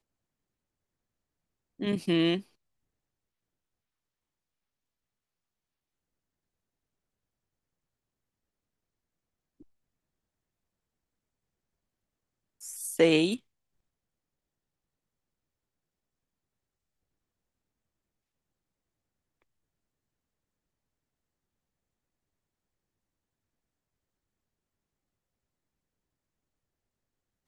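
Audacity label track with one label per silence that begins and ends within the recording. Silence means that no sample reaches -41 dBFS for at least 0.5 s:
2.410000	12.610000	silence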